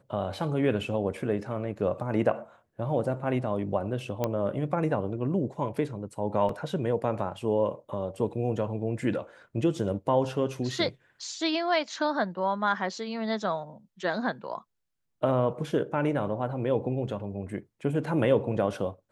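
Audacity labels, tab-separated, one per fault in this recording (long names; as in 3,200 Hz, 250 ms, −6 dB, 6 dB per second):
4.240000	4.240000	click −14 dBFS
6.490000	6.490000	drop-out 3 ms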